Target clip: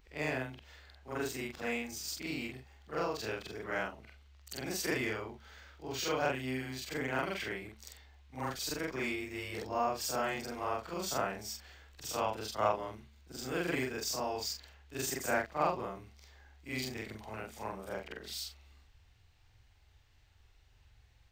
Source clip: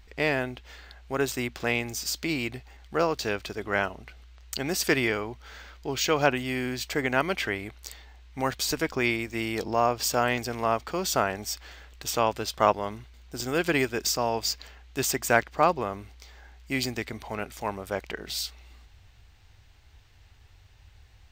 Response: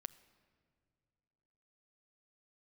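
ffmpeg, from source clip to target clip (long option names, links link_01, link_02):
-filter_complex "[0:a]afftfilt=real='re':imag='-im':win_size=4096:overlap=0.75,bandreject=frequency=220.1:width_type=h:width=4,bandreject=frequency=440.2:width_type=h:width=4,bandreject=frequency=660.3:width_type=h:width=4,acrossover=split=380|1700|5700[link_01][link_02][link_03][link_04];[link_03]asoftclip=type=hard:threshold=-31dB[link_05];[link_01][link_02][link_05][link_04]amix=inputs=4:normalize=0,volume=-4.5dB"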